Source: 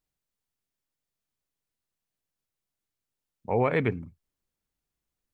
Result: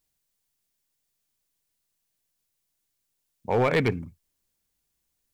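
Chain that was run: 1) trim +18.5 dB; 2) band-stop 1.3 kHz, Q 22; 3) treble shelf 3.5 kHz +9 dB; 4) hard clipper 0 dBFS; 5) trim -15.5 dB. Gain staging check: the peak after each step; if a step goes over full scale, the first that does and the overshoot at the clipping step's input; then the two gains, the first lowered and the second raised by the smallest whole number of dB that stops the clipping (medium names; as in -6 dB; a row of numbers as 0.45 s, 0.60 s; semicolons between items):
+6.0 dBFS, +6.0 dBFS, +7.0 dBFS, 0.0 dBFS, -15.5 dBFS; step 1, 7.0 dB; step 1 +11.5 dB, step 5 -8.5 dB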